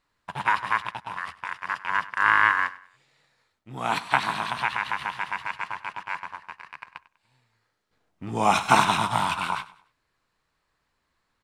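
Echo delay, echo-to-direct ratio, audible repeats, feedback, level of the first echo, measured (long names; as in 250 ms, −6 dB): 98 ms, −18.0 dB, 2, 35%, −18.5 dB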